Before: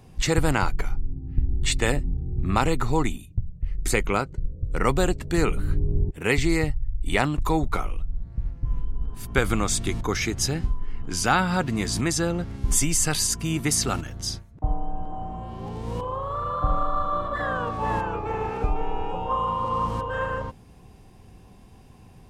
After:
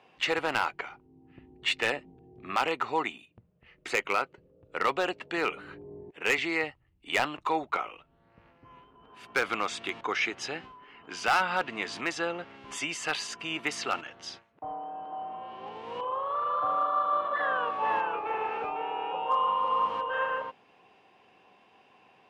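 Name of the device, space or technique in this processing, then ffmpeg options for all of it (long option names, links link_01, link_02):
megaphone: -af "highpass=570,lowpass=2800,equalizer=frequency=2800:width_type=o:width=0.47:gain=7,asoftclip=type=hard:threshold=-18dB"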